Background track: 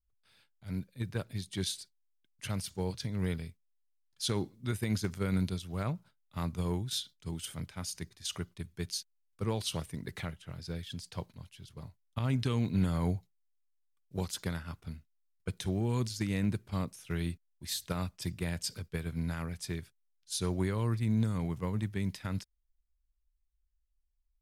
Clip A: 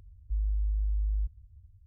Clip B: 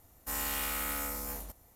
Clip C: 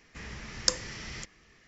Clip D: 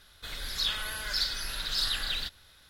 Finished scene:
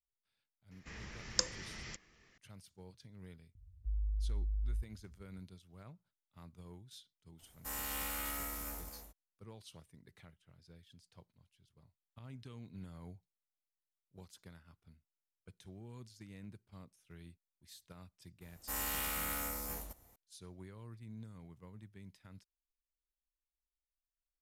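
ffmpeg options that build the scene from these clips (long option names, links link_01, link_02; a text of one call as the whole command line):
ffmpeg -i bed.wav -i cue0.wav -i cue1.wav -i cue2.wav -filter_complex "[2:a]asplit=2[link_01][link_02];[0:a]volume=-20dB[link_03];[1:a]highpass=50[link_04];[link_01]aecho=1:1:258:0.473[link_05];[3:a]atrim=end=1.67,asetpts=PTS-STARTPTS,volume=-6.5dB,afade=type=in:duration=0.004:curve=hsin,afade=type=out:start_time=1.666:duration=0.004:curve=hsin,adelay=710[link_06];[link_04]atrim=end=1.86,asetpts=PTS-STARTPTS,volume=-4dB,afade=type=in:duration=0.004:curve=hsin,afade=type=out:start_time=1.856:duration=0.004:curve=hsin,adelay=3550[link_07];[link_05]atrim=end=1.75,asetpts=PTS-STARTPTS,volume=-6.5dB,afade=type=in:duration=0.02,afade=type=out:start_time=1.73:duration=0.02,adelay=325458S[link_08];[link_02]atrim=end=1.75,asetpts=PTS-STARTPTS,volume=-3.5dB,afade=type=in:duration=0.004:curve=hsin,afade=type=out:start_time=1.746:duration=0.004:curve=hsin,adelay=18410[link_09];[link_03][link_06][link_07][link_08][link_09]amix=inputs=5:normalize=0" out.wav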